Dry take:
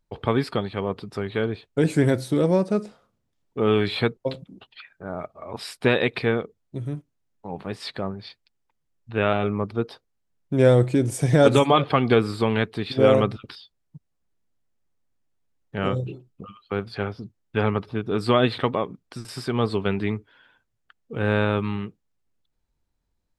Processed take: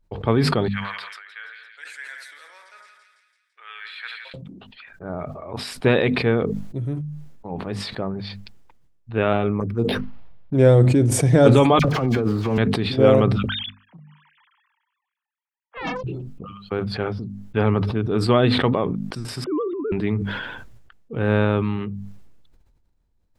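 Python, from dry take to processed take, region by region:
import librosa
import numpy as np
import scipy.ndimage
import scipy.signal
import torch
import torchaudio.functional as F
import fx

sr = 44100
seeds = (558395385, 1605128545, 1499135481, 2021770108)

y = fx.chain(x, sr, fx.ladder_highpass(hz=1500.0, resonance_pct=55),
    fx.echo_split(split_hz=1700.0, low_ms=86, high_ms=168, feedback_pct=52, wet_db=-7.5), at=(0.68, 4.34))
y = fx.chain(y, sr, fx.env_phaser(low_hz=290.0, high_hz=1700.0, full_db=-21.5),
    fx.resample_linear(factor=6), at=(9.6, 10.55))
y = fx.chain(y, sr, fx.median_filter(points=15),
    fx.dispersion(late='lows', ms=54.0, hz=1600.0),
    fx.over_compress(threshold_db=-24.0, ratio=-1.0), at=(11.79, 12.58))
y = fx.chain(y, sr, fx.sine_speech(),
    fx.highpass(hz=860.0, slope=12),
    fx.doppler_dist(depth_ms=0.61), at=(13.48, 16.04))
y = fx.chain(y, sr, fx.sine_speech(),
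    fx.savgol(points=65),
    fx.over_compress(threshold_db=-27.0, ratio=-1.0), at=(19.44, 19.92))
y = fx.tilt_eq(y, sr, slope=-1.5)
y = fx.hum_notches(y, sr, base_hz=50, count=5)
y = fx.sustainer(y, sr, db_per_s=37.0)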